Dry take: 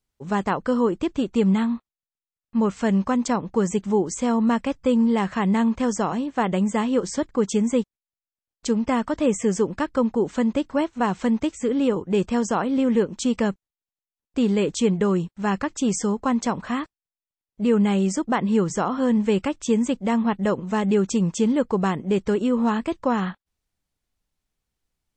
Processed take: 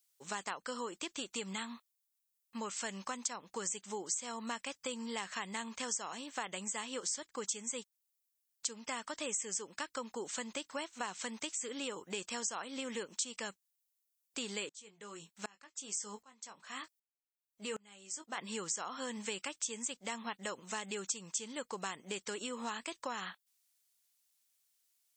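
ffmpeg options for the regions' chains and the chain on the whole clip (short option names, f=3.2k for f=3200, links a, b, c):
-filter_complex "[0:a]asettb=1/sr,asplit=3[a][b][c];[a]atrim=end=14.694[d];[b]atrim=start=14.69:end=18.38,asetpts=PTS-STARTPTS,afade=t=in:d=0.004:c=qsin,afade=t=out:st=3.686:d=0.004:c=qsin,asplit=2[e][f];[f]adelay=19,volume=-8.5dB[g];[e][g]amix=inputs=2:normalize=0,atrim=end_sample=162729,aeval=exprs='val(0)*pow(10,-31*if(lt(mod(-1.3*n/s,1),2*abs(-1.3)/1000),1-mod(-1.3*n/s,1)/(2*abs(-1.3)/1000),(mod(-1.3*n/s,1)-2*abs(-1.3)/1000)/(1-2*abs(-1.3)/1000))/20)':c=same[h];[c]atrim=start=18.376[i];[d][h]acrossfade=d=0.004:c1=hsin:c2=qsin[j];[j][i]acrossfade=d=0.004:c1=qsin:c2=hsin,aderivative,acompressor=threshold=-48dB:ratio=3,volume=9.5dB"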